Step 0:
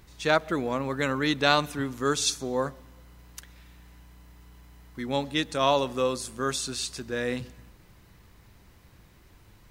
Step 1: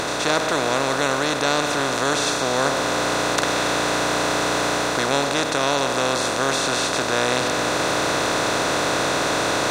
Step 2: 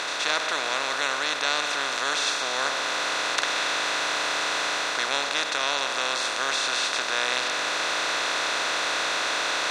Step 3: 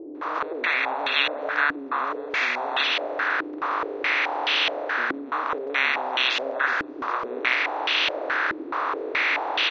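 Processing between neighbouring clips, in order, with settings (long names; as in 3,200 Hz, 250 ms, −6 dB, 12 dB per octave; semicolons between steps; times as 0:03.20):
compressor on every frequency bin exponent 0.2; speech leveller 0.5 s; level −2 dB
resonant band-pass 2,800 Hz, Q 0.68
spectral magnitudes quantised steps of 30 dB; multiband delay without the direct sound lows, highs 150 ms, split 660 Hz; low-pass on a step sequencer 4.7 Hz 320–3,000 Hz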